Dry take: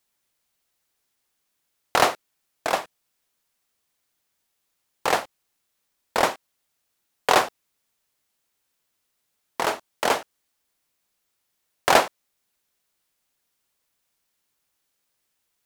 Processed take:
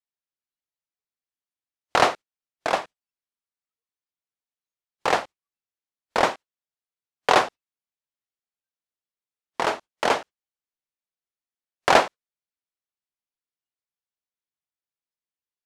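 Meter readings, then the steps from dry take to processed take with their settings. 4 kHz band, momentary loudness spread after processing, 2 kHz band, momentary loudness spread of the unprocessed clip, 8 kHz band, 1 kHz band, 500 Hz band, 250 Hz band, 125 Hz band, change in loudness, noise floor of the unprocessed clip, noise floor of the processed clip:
-0.5 dB, 13 LU, +0.5 dB, 13 LU, -4.5 dB, +0.5 dB, +1.0 dB, +1.0 dB, +1.0 dB, +0.5 dB, -76 dBFS, under -85 dBFS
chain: spectral noise reduction 21 dB; distance through air 63 m; trim +1 dB

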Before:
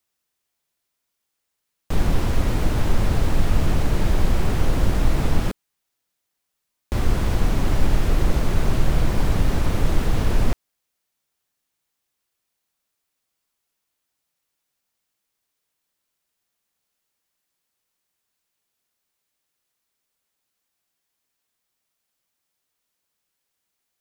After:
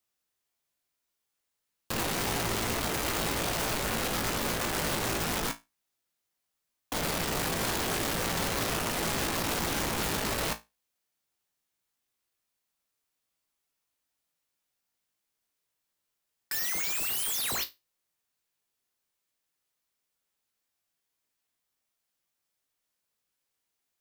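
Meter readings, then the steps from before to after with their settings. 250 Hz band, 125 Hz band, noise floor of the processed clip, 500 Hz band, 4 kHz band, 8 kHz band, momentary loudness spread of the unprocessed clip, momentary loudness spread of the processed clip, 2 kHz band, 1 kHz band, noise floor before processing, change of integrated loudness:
-8.5 dB, -15.5 dB, -83 dBFS, -4.0 dB, +4.0 dB, +7.0 dB, 4 LU, 5 LU, +1.5 dB, -1.0 dB, -79 dBFS, -5.5 dB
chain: painted sound rise, 16.51–17.64 s, 1.7–4.4 kHz -13 dBFS; integer overflow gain 21.5 dB; feedback comb 56 Hz, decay 0.21 s, harmonics all, mix 80%

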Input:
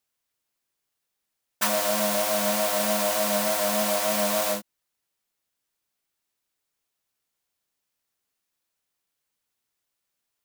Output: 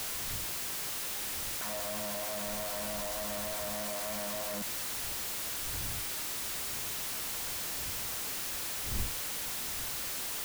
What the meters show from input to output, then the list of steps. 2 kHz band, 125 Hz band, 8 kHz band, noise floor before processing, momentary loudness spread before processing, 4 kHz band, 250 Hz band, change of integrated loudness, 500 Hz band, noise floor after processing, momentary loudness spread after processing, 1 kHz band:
-6.5 dB, -1.0 dB, -3.5 dB, -82 dBFS, 2 LU, -4.0 dB, -11.5 dB, -10.5 dB, -13.0 dB, -37 dBFS, 1 LU, -11.0 dB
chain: one-bit comparator; wind noise 93 Hz -42 dBFS; trim -6.5 dB

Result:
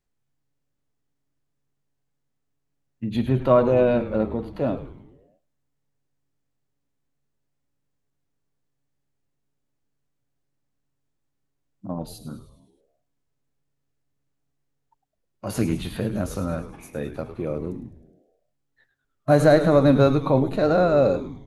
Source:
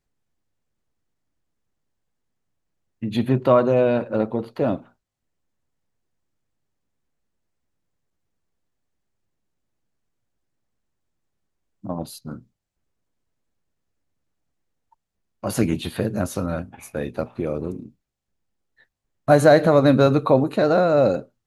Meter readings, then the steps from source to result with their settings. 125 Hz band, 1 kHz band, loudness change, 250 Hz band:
0.0 dB, -3.0 dB, -1.5 dB, -1.0 dB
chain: frequency-shifting echo 104 ms, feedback 54%, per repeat -140 Hz, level -13 dB; harmonic-percussive split percussive -6 dB

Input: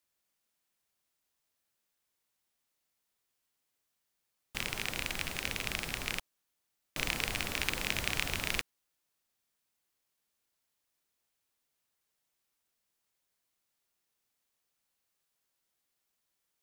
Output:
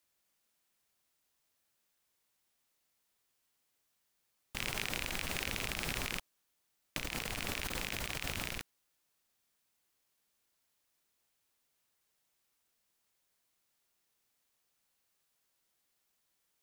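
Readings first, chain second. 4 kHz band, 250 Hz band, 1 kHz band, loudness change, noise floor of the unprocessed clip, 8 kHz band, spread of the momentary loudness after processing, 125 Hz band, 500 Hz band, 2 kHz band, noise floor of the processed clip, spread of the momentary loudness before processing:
-3.5 dB, -1.0 dB, -2.0 dB, -3.5 dB, -83 dBFS, -2.5 dB, 6 LU, -1.5 dB, -1.5 dB, -4.0 dB, -80 dBFS, 6 LU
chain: compressor with a negative ratio -39 dBFS, ratio -1

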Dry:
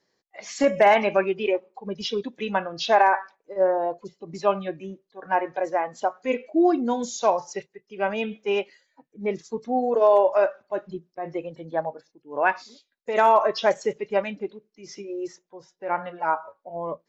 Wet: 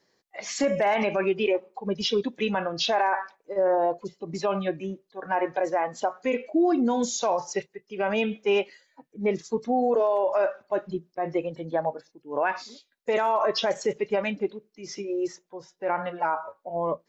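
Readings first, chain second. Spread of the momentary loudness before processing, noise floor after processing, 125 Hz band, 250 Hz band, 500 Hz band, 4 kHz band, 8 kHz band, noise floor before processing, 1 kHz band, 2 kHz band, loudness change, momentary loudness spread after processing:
18 LU, -74 dBFS, +2.5 dB, +0.5 dB, -2.0 dB, +2.5 dB, no reading, -77 dBFS, -4.0 dB, -3.0 dB, -3.0 dB, 12 LU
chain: peak limiter -19 dBFS, peak gain reduction 11 dB; trim +3.5 dB

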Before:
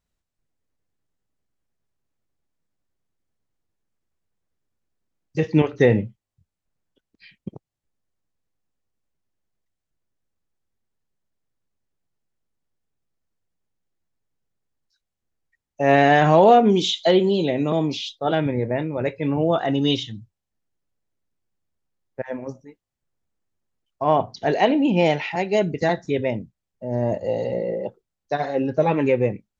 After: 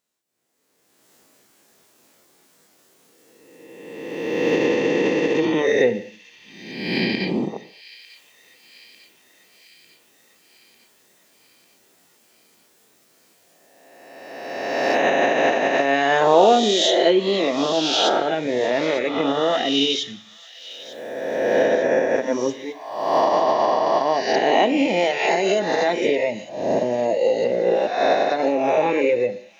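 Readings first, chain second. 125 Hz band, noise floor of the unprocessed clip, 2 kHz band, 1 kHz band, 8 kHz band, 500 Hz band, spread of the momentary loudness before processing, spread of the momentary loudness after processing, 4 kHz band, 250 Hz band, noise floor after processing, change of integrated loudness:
-10.0 dB, -84 dBFS, +5.0 dB, +2.5 dB, no reading, +3.5 dB, 17 LU, 13 LU, +6.5 dB, 0.0 dB, -59 dBFS, +0.5 dB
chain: reverse spectral sustain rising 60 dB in 1.92 s; recorder AGC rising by 26 dB/s; Chebyshev high-pass 320 Hz, order 2; reverb removal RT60 0.99 s; treble shelf 3.8 kHz +6.5 dB; on a send: feedback echo behind a high-pass 898 ms, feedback 62%, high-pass 2.9 kHz, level -14 dB; on the sum: gated-style reverb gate 260 ms falling, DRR 11.5 dB; trim -1.5 dB

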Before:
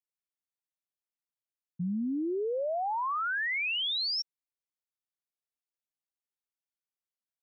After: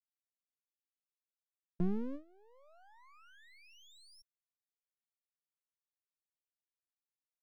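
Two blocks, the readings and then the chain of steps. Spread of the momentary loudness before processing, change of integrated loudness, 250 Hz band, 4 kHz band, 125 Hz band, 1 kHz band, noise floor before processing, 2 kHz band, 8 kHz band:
6 LU, -9.0 dB, -7.0 dB, -31.0 dB, -2.0 dB, -26.0 dB, under -85 dBFS, -30.5 dB, no reading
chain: resonant low shelf 210 Hz +11.5 dB, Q 1.5; gate with hold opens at -25 dBFS; half-wave rectifier; trim -5 dB

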